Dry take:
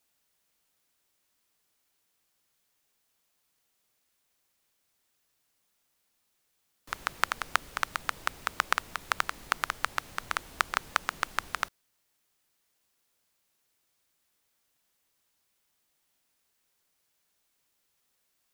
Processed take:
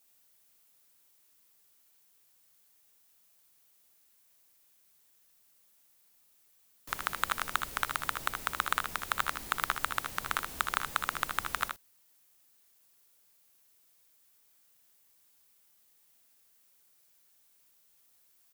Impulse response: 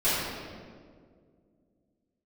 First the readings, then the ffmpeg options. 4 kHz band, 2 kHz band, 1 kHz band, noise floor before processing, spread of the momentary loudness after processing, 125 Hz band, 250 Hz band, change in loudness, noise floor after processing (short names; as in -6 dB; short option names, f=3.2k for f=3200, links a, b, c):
-1.0 dB, -2.0 dB, -1.0 dB, -76 dBFS, 4 LU, +2.0 dB, +0.5 dB, -1.0 dB, -67 dBFS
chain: -af "asoftclip=type=tanh:threshold=-13.5dB,highshelf=f=8.5k:g=10.5,aecho=1:1:63|77:0.282|0.447,volume=1dB"